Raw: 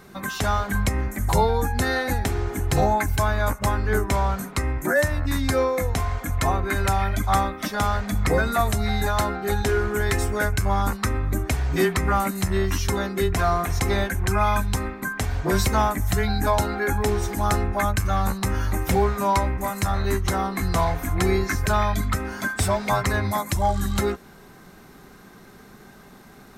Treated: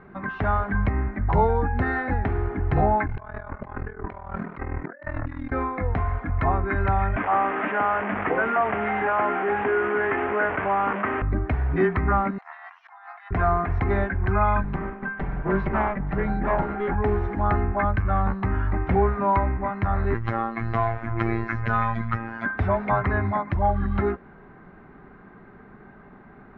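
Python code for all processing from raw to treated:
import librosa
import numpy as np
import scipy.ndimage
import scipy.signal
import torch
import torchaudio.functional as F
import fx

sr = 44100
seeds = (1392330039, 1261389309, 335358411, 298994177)

y = fx.chain(x, sr, fx.low_shelf(hz=180.0, db=-5.0),
    fx.ring_mod(carrier_hz=20.0),
    fx.over_compress(threshold_db=-32.0, ratio=-0.5), at=(3.06, 5.52))
y = fx.chain(y, sr, fx.delta_mod(bps=16000, step_db=-25.0),
    fx.highpass(hz=330.0, slope=12),
    fx.env_flatten(amount_pct=50), at=(7.16, 11.22))
y = fx.chain(y, sr, fx.brickwall_bandpass(low_hz=640.0, high_hz=11000.0),
    fx.peak_eq(hz=2400.0, db=-5.0, octaves=1.9),
    fx.over_compress(threshold_db=-43.0, ratio=-1.0), at=(12.38, 13.31))
y = fx.chain(y, sr, fx.lower_of_two(delay_ms=5.1),
    fx.high_shelf(hz=5100.0, db=-11.0), at=(14.63, 16.95))
y = fx.chain(y, sr, fx.high_shelf(hz=2400.0, db=9.5),
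    fx.robotise(hz=114.0), at=(20.14, 22.46))
y = scipy.signal.sosfilt(scipy.signal.butter(4, 2000.0, 'lowpass', fs=sr, output='sos'), y)
y = fx.notch(y, sr, hz=520.0, q=16.0)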